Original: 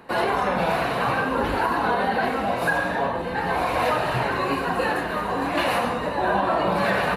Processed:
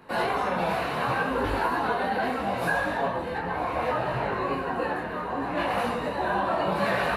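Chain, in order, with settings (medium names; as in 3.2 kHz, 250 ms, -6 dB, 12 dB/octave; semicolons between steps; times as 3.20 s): 3.38–5.78 s: treble shelf 3 kHz -11.5 dB; detune thickener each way 24 cents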